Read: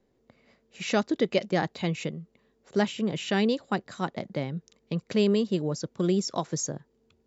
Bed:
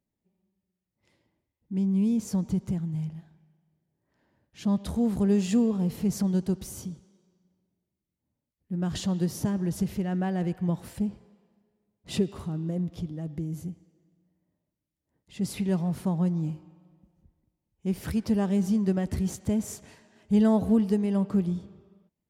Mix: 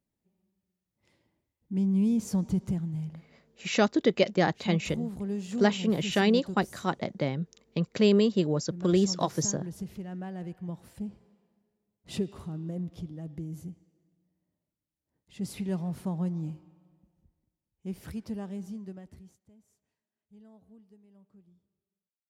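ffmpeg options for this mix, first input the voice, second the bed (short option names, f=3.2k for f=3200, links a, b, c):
-filter_complex "[0:a]adelay=2850,volume=1.5dB[a];[1:a]volume=4.5dB,afade=t=out:st=2.7:d=0.8:silence=0.334965,afade=t=in:st=10.91:d=0.4:silence=0.562341,afade=t=out:st=17.17:d=2.24:silence=0.0375837[b];[a][b]amix=inputs=2:normalize=0"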